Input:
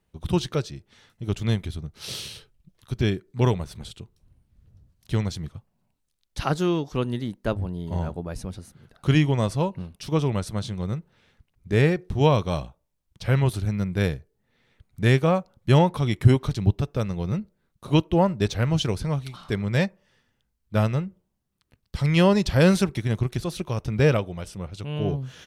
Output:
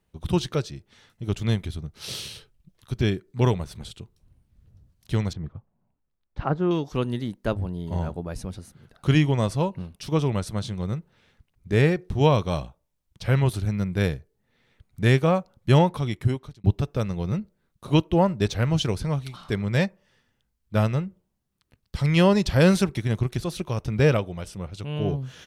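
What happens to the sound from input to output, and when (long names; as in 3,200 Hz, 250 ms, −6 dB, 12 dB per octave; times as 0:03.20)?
0:05.33–0:06.71: low-pass filter 1,400 Hz
0:15.80–0:16.64: fade out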